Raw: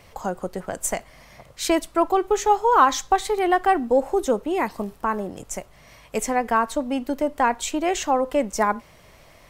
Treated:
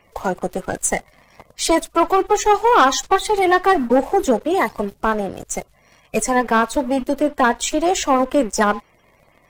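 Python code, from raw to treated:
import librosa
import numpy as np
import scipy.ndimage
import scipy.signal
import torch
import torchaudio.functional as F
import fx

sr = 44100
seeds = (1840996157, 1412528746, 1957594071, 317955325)

y = fx.spec_quant(x, sr, step_db=30)
y = fx.leveller(y, sr, passes=2)
y = F.gain(torch.from_numpy(y), -1.0).numpy()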